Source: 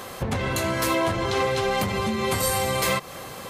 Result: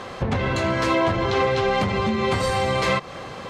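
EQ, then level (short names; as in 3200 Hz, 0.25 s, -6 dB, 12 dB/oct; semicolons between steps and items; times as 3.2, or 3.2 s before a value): air absorption 130 m; +3.5 dB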